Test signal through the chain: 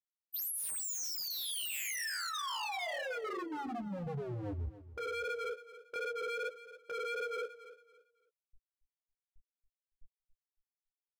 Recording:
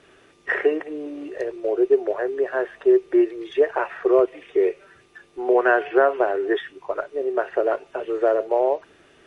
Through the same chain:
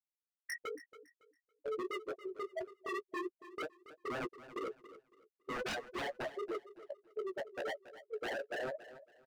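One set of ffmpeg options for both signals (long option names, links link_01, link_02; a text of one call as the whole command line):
ffmpeg -i in.wav -filter_complex "[0:a]afftfilt=real='re*gte(hypot(re,im),0.708)':imag='im*gte(hypot(re,im),0.708)':win_size=1024:overlap=0.75,agate=range=-8dB:threshold=-34dB:ratio=16:detection=peak,firequalizer=gain_entry='entry(130,0);entry(190,-5);entry(900,0);entry(1500,-1);entry(2500,14);entry(3700,-3)':delay=0.05:min_phase=1,acompressor=threshold=-21dB:ratio=2,asoftclip=type=tanh:threshold=-18dB,flanger=delay=16:depth=5.3:speed=2.6,aeval=exprs='0.0282*(abs(mod(val(0)/0.0282+3,4)-2)-1)':channel_layout=same,asplit=2[link_01][link_02];[link_02]adelay=14,volume=-12.5dB[link_03];[link_01][link_03]amix=inputs=2:normalize=0,asplit=2[link_04][link_05];[link_05]aecho=0:1:279|558|837:0.178|0.048|0.013[link_06];[link_04][link_06]amix=inputs=2:normalize=0,volume=-3dB" out.wav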